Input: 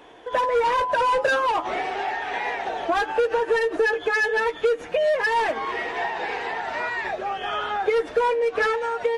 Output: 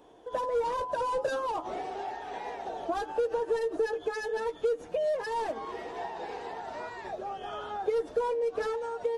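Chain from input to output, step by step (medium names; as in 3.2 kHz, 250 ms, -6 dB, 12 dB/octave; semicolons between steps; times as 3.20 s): peaking EQ 2.1 kHz -14 dB 1.6 oct; trim -5.5 dB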